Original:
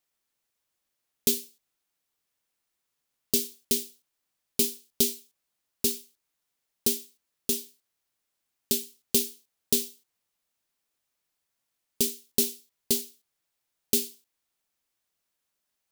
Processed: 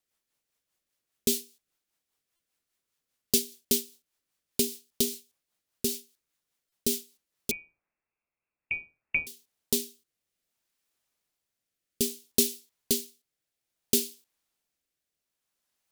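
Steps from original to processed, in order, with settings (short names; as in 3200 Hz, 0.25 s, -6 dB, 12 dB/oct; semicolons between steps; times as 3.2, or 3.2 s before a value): rotary speaker horn 5 Hz, later 0.6 Hz, at 7.05; 7.51–9.27 inverted band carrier 2700 Hz; stuck buffer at 2.36/6.69, samples 128, times 10; gain +2 dB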